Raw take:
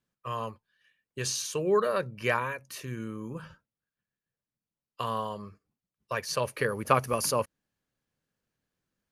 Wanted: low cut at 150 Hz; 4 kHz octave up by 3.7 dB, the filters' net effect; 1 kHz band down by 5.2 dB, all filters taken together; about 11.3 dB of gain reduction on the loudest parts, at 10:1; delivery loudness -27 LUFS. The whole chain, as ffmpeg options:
-af "highpass=150,equalizer=f=1000:t=o:g=-6.5,equalizer=f=4000:t=o:g=5,acompressor=threshold=0.0251:ratio=10,volume=3.55"

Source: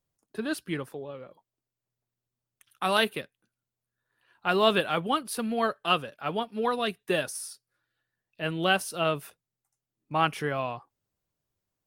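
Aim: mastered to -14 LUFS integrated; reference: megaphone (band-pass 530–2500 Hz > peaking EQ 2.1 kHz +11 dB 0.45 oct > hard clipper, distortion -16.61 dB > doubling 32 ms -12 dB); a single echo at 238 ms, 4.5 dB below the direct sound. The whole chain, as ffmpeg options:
-filter_complex "[0:a]highpass=530,lowpass=2500,equalizer=f=2100:t=o:w=0.45:g=11,aecho=1:1:238:0.596,asoftclip=type=hard:threshold=0.133,asplit=2[s0][s1];[s1]adelay=32,volume=0.251[s2];[s0][s2]amix=inputs=2:normalize=0,volume=5.62"

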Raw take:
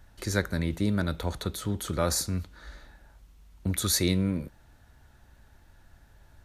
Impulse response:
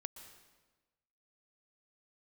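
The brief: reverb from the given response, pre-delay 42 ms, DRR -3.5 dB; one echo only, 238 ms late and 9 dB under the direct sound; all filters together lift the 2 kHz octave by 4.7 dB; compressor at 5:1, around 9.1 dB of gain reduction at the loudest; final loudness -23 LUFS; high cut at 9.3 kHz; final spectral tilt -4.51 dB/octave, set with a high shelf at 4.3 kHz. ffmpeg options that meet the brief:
-filter_complex "[0:a]lowpass=9300,equalizer=f=2000:t=o:g=7,highshelf=f=4300:g=-4,acompressor=threshold=0.0355:ratio=5,aecho=1:1:238:0.355,asplit=2[s0][s1];[1:a]atrim=start_sample=2205,adelay=42[s2];[s1][s2]afir=irnorm=-1:irlink=0,volume=2.24[s3];[s0][s3]amix=inputs=2:normalize=0,volume=2.11"

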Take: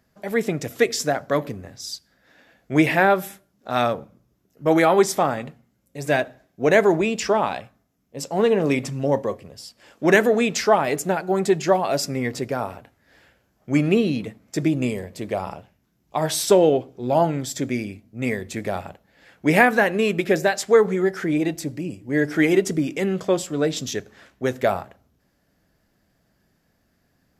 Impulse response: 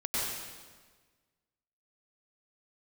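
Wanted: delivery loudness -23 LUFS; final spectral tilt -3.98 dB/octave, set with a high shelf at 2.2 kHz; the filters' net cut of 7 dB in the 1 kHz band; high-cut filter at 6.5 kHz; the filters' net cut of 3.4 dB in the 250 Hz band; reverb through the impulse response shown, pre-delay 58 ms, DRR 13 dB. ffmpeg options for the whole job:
-filter_complex "[0:a]lowpass=6500,equalizer=f=250:t=o:g=-4,equalizer=f=1000:t=o:g=-8.5,highshelf=f=2200:g=-8.5,asplit=2[s0][s1];[1:a]atrim=start_sample=2205,adelay=58[s2];[s1][s2]afir=irnorm=-1:irlink=0,volume=0.0944[s3];[s0][s3]amix=inputs=2:normalize=0,volume=1.33"

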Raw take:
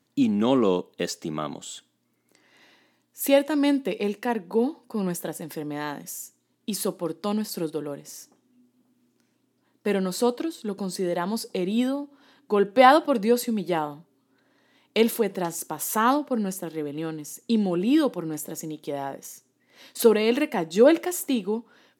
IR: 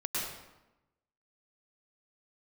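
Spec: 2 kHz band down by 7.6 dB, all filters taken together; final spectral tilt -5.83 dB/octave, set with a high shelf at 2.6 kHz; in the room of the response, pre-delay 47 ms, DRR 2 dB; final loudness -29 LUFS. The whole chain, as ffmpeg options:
-filter_complex "[0:a]equalizer=f=2000:t=o:g=-8.5,highshelf=f=2600:g=-3.5,asplit=2[s0][s1];[1:a]atrim=start_sample=2205,adelay=47[s2];[s1][s2]afir=irnorm=-1:irlink=0,volume=0.422[s3];[s0][s3]amix=inputs=2:normalize=0,volume=0.531"

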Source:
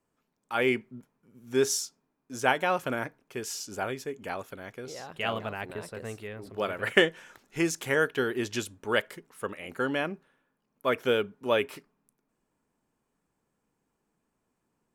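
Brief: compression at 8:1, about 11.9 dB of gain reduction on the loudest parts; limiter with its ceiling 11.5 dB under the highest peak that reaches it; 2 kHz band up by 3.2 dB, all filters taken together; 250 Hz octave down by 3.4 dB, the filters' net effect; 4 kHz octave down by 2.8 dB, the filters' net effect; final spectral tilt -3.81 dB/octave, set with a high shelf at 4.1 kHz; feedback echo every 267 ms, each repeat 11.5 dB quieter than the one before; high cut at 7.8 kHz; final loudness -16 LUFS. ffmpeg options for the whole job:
-af "lowpass=7800,equalizer=f=250:t=o:g=-5,equalizer=f=2000:t=o:g=6,equalizer=f=4000:t=o:g=-4.5,highshelf=f=4100:g=-5,acompressor=threshold=0.0501:ratio=8,alimiter=limit=0.075:level=0:latency=1,aecho=1:1:267|534|801:0.266|0.0718|0.0194,volume=10.6"

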